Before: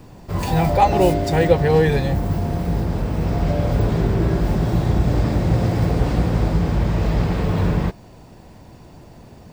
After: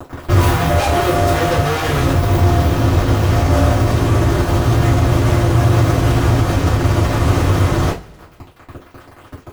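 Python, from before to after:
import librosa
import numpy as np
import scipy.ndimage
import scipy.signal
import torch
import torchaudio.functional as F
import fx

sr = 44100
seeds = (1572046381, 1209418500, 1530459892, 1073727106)

y = fx.peak_eq(x, sr, hz=5700.0, db=-11.0, octaves=1.5)
y = fx.fuzz(y, sr, gain_db=38.0, gate_db=-36.0)
y = fx.rider(y, sr, range_db=10, speed_s=0.5)
y = fx.rev_double_slope(y, sr, seeds[0], early_s=0.26, late_s=1.9, knee_db=-27, drr_db=-8.5)
y = y * 10.0 ** (-9.5 / 20.0)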